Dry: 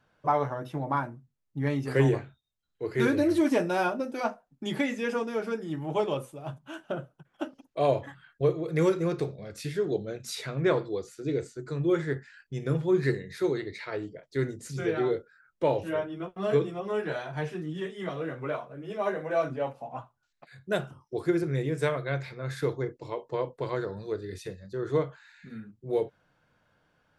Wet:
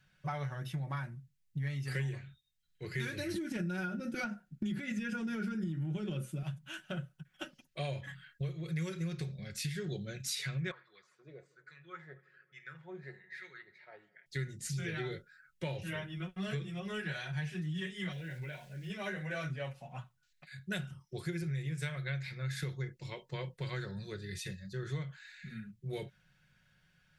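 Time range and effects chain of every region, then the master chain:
0:03.34–0:06.43: hollow resonant body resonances 210/300/1,400 Hz, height 16 dB, ringing for 35 ms + downward compressor, threshold −20 dBFS
0:10.71–0:14.26: LFO wah 1.2 Hz 630–1,900 Hz, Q 3.9 + bucket-brigade delay 80 ms, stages 2,048, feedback 81%, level −24 dB
0:18.12–0:18.90: downward compressor 2 to 1, threshold −38 dBFS + centre clipping without the shift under −58 dBFS + Butterworth band-reject 1,200 Hz, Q 2.9
whole clip: flat-topped bell 540 Hz −15.5 dB 2.7 octaves; comb filter 5.4 ms, depth 44%; downward compressor 6 to 1, threshold −37 dBFS; level +3 dB

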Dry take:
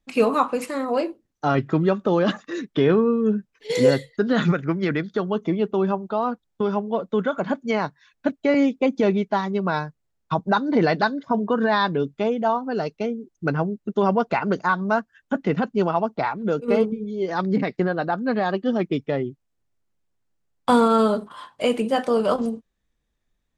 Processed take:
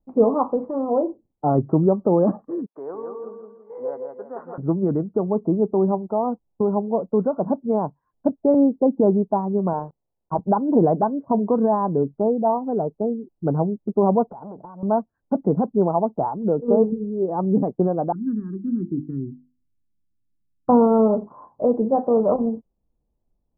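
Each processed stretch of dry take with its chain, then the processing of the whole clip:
0:02.66–0:04.58: high-pass filter 1,100 Hz + repeating echo 166 ms, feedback 39%, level −4.5 dB
0:09.73–0:10.39: one scale factor per block 3 bits + low-shelf EQ 240 Hz −8.5 dB
0:14.27–0:14.83: downward compressor 20 to 1, threshold −30 dBFS + saturating transformer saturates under 1,400 Hz
0:18.12–0:20.69: Chebyshev band-stop filter 310–1,500 Hz, order 3 + high-frequency loss of the air 330 metres + mains-hum notches 50/100/150/200/250/300/350 Hz
whole clip: adaptive Wiener filter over 9 samples; Butterworth low-pass 940 Hz 36 dB per octave; level +2.5 dB

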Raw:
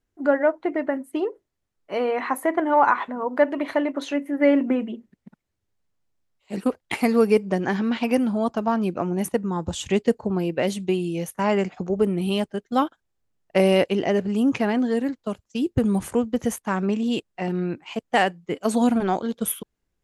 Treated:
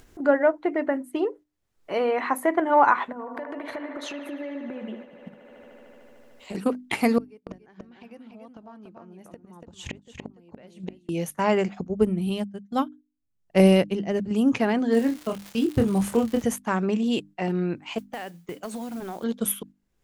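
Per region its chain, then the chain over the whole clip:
0:03.12–0:06.55: downward compressor 16 to 1, threshold −32 dBFS + delay with a band-pass on its return 75 ms, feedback 83%, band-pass 1,100 Hz, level −5 dB
0:07.18–0:11.09: high-shelf EQ 8,400 Hz −9 dB + gate with flip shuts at −20 dBFS, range −32 dB + single-tap delay 287 ms −6.5 dB
0:11.81–0:14.31: bass and treble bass +10 dB, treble +3 dB + expander for the loud parts 2.5 to 1, over −25 dBFS
0:14.91–0:16.42: surface crackle 230 per second −31 dBFS + double-tracking delay 26 ms −5.5 dB
0:17.98–0:19.24: downward compressor 5 to 1, threshold −33 dBFS + noise that follows the level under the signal 20 dB
whole clip: mains-hum notches 50/100/150/200/250/300 Hz; noise gate −43 dBFS, range −7 dB; upward compression, threshold −30 dBFS

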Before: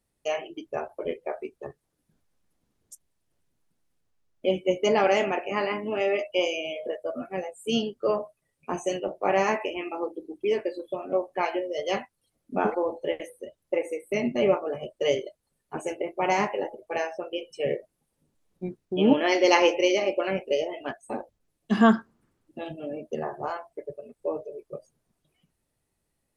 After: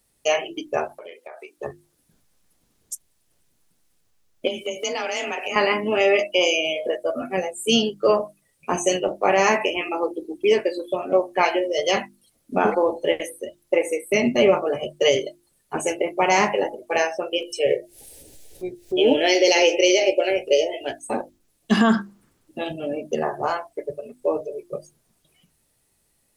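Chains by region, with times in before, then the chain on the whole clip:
0:00.95–0:01.58: high-pass filter 670 Hz + downward compressor 12 to 1, threshold −42 dBFS
0:04.47–0:05.56: high-shelf EQ 2,300 Hz +11 dB + downward compressor 5 to 1, threshold −33 dBFS + frequency shifter +30 Hz
0:17.41–0:20.99: phaser with its sweep stopped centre 470 Hz, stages 4 + upward compression, threshold −38 dBFS + double-tracking delay 16 ms −12.5 dB
whole clip: high-shelf EQ 2,900 Hz +8.5 dB; mains-hum notches 50/100/150/200/250/300/350 Hz; boost into a limiter +13 dB; level −6 dB

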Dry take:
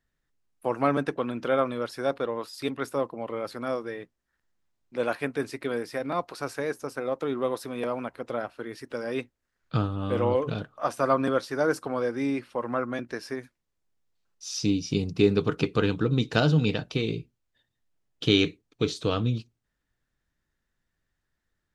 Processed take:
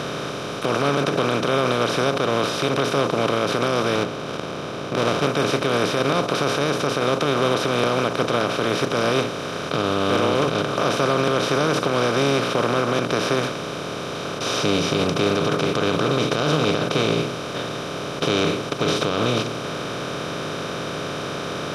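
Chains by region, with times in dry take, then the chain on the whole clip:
0:03.95–0:05.27: head-to-tape spacing loss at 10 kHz 37 dB + windowed peak hold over 17 samples
whole clip: compressor on every frequency bin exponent 0.2; low-shelf EQ 80 Hz −11 dB; boost into a limiter +7 dB; level −8.5 dB

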